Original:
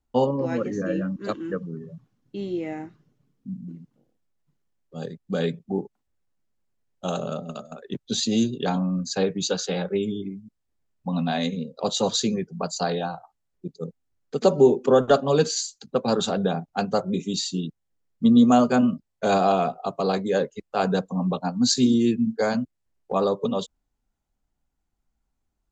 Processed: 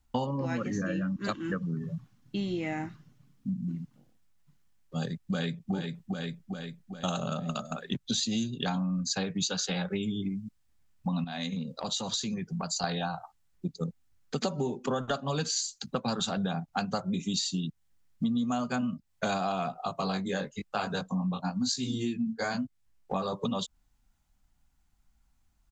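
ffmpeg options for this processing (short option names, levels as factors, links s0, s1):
-filter_complex "[0:a]asplit=2[s0][s1];[s1]afade=t=in:st=5:d=0.01,afade=t=out:st=5.73:d=0.01,aecho=0:1:400|800|1200|1600|2000|2400|2800:0.421697|0.231933|0.127563|0.0701598|0.0385879|0.0212233|0.0116728[s2];[s0][s2]amix=inputs=2:normalize=0,asettb=1/sr,asplit=3[s3][s4][s5];[s3]atrim=end=11.244[s6];[s4]atrim=start=11.24:end=12.84,asetpts=PTS-STARTPTS,afade=t=in:d=0.004:c=qsin,afade=t=out:st=1.596:d=0.004:c=qsin,acompressor=threshold=0.0158:ratio=3:attack=3.2:release=140:knee=1:detection=peak[s7];[s5]atrim=start=12.836[s8];[s6][s7]acrossfade=d=0.004:c1=hsin:c2=qsin[s9];[s9][s8]acrossfade=d=0.004:c1=qsin:c2=hsin,asettb=1/sr,asplit=3[s10][s11][s12];[s10]atrim=end=19.844[s13];[s11]atrim=start=19.84:end=23.33,asetpts=PTS-STARTPTS,afade=t=in:d=0.004:c=qsin,afade=t=out:st=3.486:d=0.004:c=qsin,flanger=delay=18.5:depth=3.4:speed=1[s14];[s12]atrim=start=23.326[s15];[s13][s14]acrossfade=d=0.004:c1=hsin:c2=qsin[s16];[s16][s15]acrossfade=d=0.004:c1=qsin:c2=hsin,equalizer=f=430:w=1.1:g=-12.5,acompressor=threshold=0.0141:ratio=6,volume=2.66"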